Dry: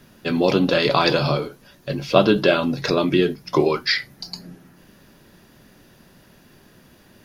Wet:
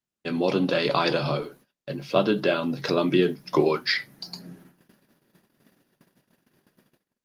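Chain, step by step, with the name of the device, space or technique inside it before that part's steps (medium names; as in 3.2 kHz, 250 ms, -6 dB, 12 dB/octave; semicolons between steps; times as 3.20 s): video call (high-pass 130 Hz 24 dB/octave; level rider gain up to 6 dB; gate -43 dBFS, range -35 dB; trim -6 dB; Opus 32 kbps 48 kHz)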